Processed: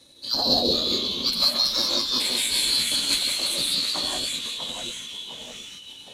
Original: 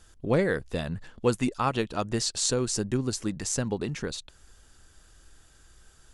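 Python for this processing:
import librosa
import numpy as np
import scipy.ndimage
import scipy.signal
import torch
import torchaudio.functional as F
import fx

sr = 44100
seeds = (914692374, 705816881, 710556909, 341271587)

p1 = fx.band_shuffle(x, sr, order='2413')
p2 = fx.transient(p1, sr, attack_db=3, sustain_db=7)
p3 = 10.0 ** (-21.0 / 20.0) * np.tanh(p2 / 10.0 ** (-21.0 / 20.0))
p4 = p2 + (p3 * 10.0 ** (-4.5 / 20.0))
p5 = fx.small_body(p4, sr, hz=(270.0, 570.0, 2600.0), ring_ms=40, db=15)
p6 = p5 + fx.echo_wet_highpass(p5, sr, ms=188, feedback_pct=67, hz=1800.0, wet_db=-13.0, dry=0)
p7 = fx.echo_pitch(p6, sr, ms=161, semitones=-2, count=3, db_per_echo=-6.0)
p8 = fx.rev_gated(p7, sr, seeds[0], gate_ms=210, shape='rising', drr_db=-3.0)
p9 = fx.formant_shift(p8, sr, semitones=5)
y = p9 * 10.0 ** (-8.0 / 20.0)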